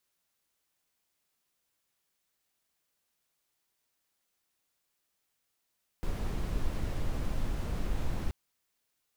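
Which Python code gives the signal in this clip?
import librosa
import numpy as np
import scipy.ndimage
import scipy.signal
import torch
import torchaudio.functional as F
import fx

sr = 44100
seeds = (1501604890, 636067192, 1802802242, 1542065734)

y = fx.noise_colour(sr, seeds[0], length_s=2.28, colour='brown', level_db=-30.5)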